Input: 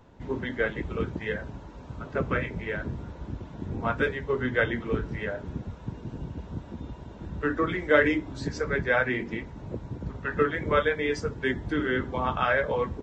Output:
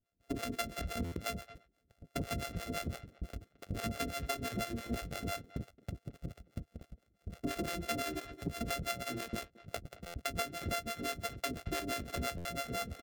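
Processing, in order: sorted samples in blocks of 64 samples; harmonic tremolo 5.9 Hz, depth 100%, crossover 450 Hz; gate -38 dBFS, range -30 dB; peaking EQ 940 Hz -14 dB 0.38 oct; speakerphone echo 220 ms, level -20 dB; compression 10:1, threshold -35 dBFS, peak gain reduction 16.5 dB; peaking EQ 130 Hz -5 dB 0.22 oct; buffer glitch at 1.04/10.06/12.37 s, samples 512, times 6; transformer saturation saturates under 270 Hz; trim +3 dB

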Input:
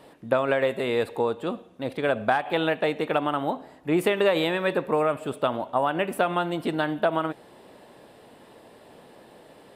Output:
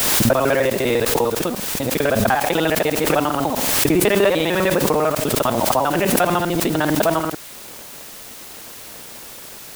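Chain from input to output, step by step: time reversed locally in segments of 50 ms; bass shelf 82 Hz +10.5 dB; in parallel at +2.5 dB: compression, threshold -39 dBFS, peak gain reduction 20.5 dB; on the sum: crossover distortion -43.5 dBFS; added noise white -41 dBFS; swell ahead of each attack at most 20 dB/s; trim +3.5 dB

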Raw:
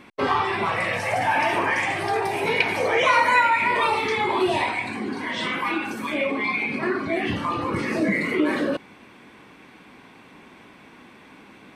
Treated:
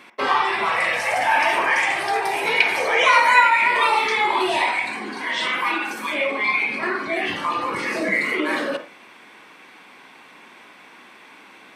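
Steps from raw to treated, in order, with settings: high-pass 910 Hz 6 dB/octave; on a send: reverberation RT60 0.30 s, pre-delay 44 ms, DRR 8 dB; on the sum: trim +5 dB

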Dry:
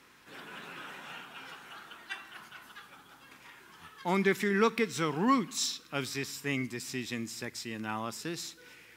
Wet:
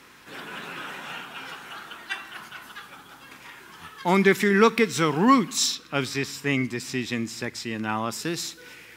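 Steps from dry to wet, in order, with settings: 5.75–8.11 s: treble shelf 6.9 kHz -8.5 dB; trim +8.5 dB

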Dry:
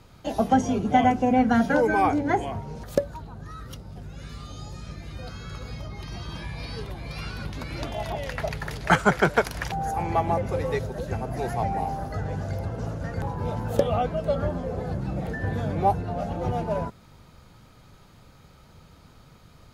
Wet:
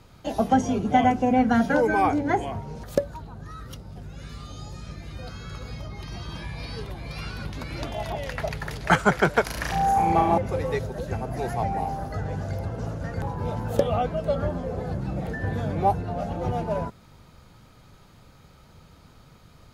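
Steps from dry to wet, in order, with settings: 9.43–10.38 s: flutter echo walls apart 6.1 m, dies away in 0.71 s

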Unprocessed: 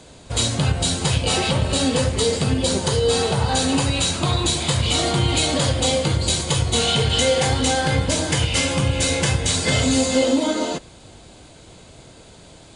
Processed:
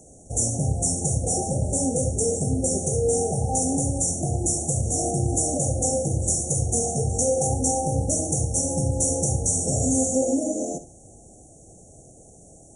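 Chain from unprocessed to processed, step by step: treble shelf 7.1 kHz +11.5 dB; flutter echo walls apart 11.8 m, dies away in 0.3 s; FFT band-reject 850–5500 Hz; trim -4.5 dB

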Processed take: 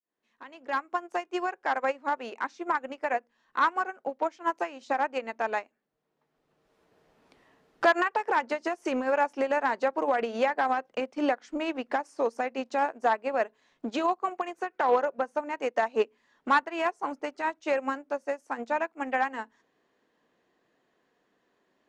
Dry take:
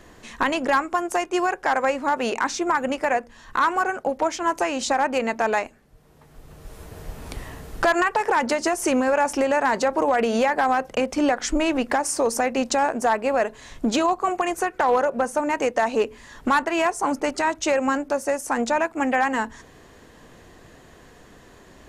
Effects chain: fade-in on the opening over 0.97 s; three-band isolator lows -24 dB, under 180 Hz, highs -15 dB, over 5.5 kHz; upward expansion 2.5:1, over -30 dBFS; trim -1 dB

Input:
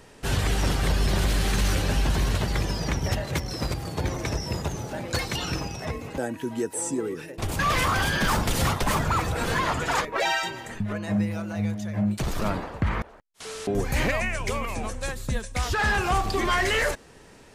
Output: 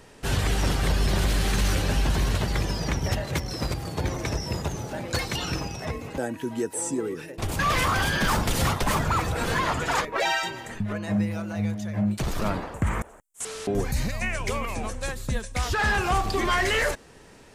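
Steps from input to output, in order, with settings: 12.74–13.45 s: resonant high shelf 6 kHz +10 dB, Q 3; 13.92–14.22 s: time-frequency box 240–3600 Hz -11 dB

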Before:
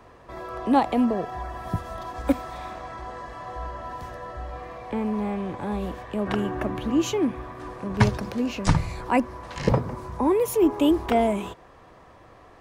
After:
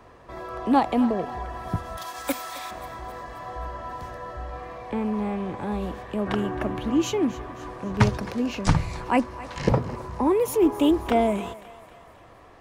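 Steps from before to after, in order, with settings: 1.97–2.71 s: tilt EQ +4.5 dB/octave; thinning echo 266 ms, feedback 57%, high-pass 560 Hz, level -16 dB; loudspeaker Doppler distortion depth 0.17 ms

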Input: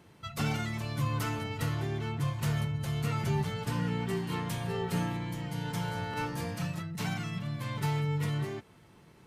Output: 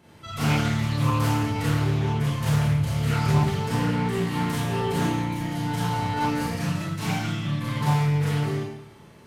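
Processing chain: Schroeder reverb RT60 0.76 s, combs from 27 ms, DRR -7.5 dB; loudspeaker Doppler distortion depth 0.32 ms

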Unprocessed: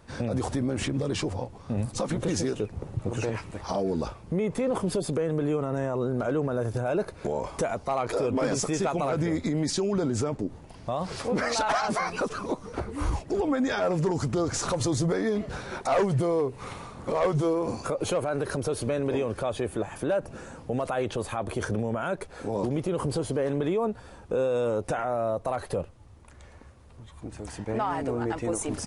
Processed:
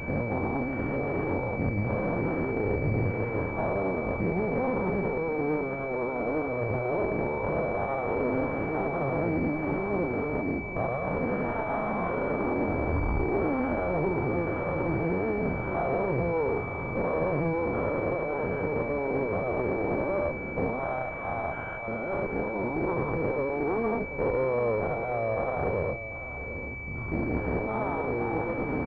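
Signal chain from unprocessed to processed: every event in the spectrogram widened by 240 ms; recorder AGC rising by 7.2 dB/s; 20.79–21.88 s: steep high-pass 630 Hz 48 dB/octave; peak limiter -14.5 dBFS, peak gain reduction 8.5 dB; one-sided clip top -38 dBFS, bottom -17 dBFS; delay 743 ms -12.5 dB; class-D stage that switches slowly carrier 2.3 kHz

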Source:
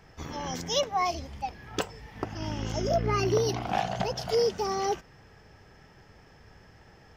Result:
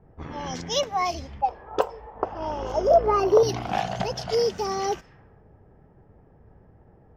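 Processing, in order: level-controlled noise filter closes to 550 Hz, open at -27.5 dBFS; 1.41–3.43 s: graphic EQ 125/250/500/1000/2000/4000/8000 Hz -12/-7/+10/+9/-8/-4/-10 dB; trim +2 dB

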